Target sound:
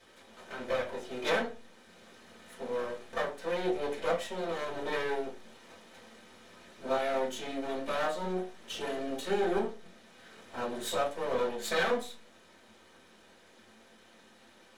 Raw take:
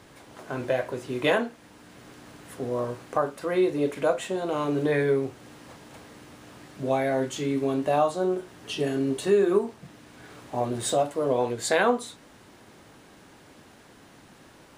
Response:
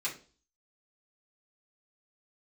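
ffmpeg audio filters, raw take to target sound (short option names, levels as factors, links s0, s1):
-filter_complex "[0:a]highshelf=f=8600:g=-9,aeval=exprs='max(val(0),0)':c=same[s0];[1:a]atrim=start_sample=2205,asetrate=66150,aresample=44100[s1];[s0][s1]afir=irnorm=-1:irlink=0"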